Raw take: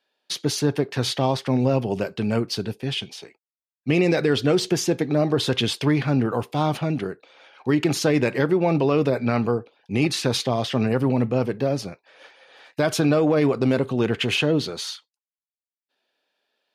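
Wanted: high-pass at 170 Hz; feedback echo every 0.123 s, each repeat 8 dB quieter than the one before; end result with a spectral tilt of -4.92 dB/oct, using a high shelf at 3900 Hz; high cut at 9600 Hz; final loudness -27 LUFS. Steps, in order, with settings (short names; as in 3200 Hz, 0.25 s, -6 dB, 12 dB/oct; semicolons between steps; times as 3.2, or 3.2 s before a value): HPF 170 Hz; LPF 9600 Hz; high shelf 3900 Hz -6 dB; feedback echo 0.123 s, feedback 40%, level -8 dB; gain -4 dB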